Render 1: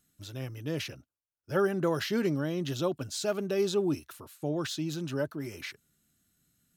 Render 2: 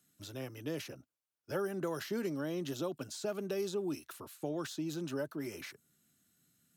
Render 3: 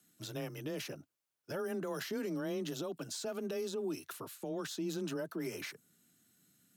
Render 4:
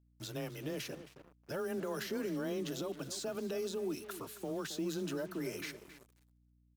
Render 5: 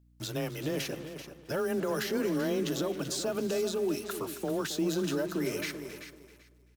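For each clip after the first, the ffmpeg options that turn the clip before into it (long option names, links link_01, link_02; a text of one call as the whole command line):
ffmpeg -i in.wav -filter_complex "[0:a]highpass=120,acrossover=split=200|1400|6000[link_01][link_02][link_03][link_04];[link_01]acompressor=threshold=-51dB:ratio=4[link_05];[link_02]acompressor=threshold=-35dB:ratio=4[link_06];[link_03]acompressor=threshold=-51dB:ratio=4[link_07];[link_04]acompressor=threshold=-49dB:ratio=4[link_08];[link_05][link_06][link_07][link_08]amix=inputs=4:normalize=0" out.wav
ffmpeg -i in.wav -af "alimiter=level_in=9.5dB:limit=-24dB:level=0:latency=1:release=83,volume=-9.5dB,afreqshift=19,volume=3dB" out.wav
ffmpeg -i in.wav -filter_complex "[0:a]asplit=2[link_01][link_02];[link_02]adelay=270,lowpass=frequency=2700:poles=1,volume=-12.5dB,asplit=2[link_03][link_04];[link_04]adelay=270,lowpass=frequency=2700:poles=1,volume=0.35,asplit=2[link_05][link_06];[link_06]adelay=270,lowpass=frequency=2700:poles=1,volume=0.35,asplit=2[link_07][link_08];[link_08]adelay=270,lowpass=frequency=2700:poles=1,volume=0.35[link_09];[link_01][link_03][link_05][link_07][link_09]amix=inputs=5:normalize=0,acrusher=bits=8:mix=0:aa=0.5,aeval=exprs='val(0)+0.000398*(sin(2*PI*60*n/s)+sin(2*PI*2*60*n/s)/2+sin(2*PI*3*60*n/s)/3+sin(2*PI*4*60*n/s)/4+sin(2*PI*5*60*n/s)/5)':channel_layout=same" out.wav
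ffmpeg -i in.wav -af "aecho=1:1:386|772|1158:0.282|0.0535|0.0102,volume=7dB" out.wav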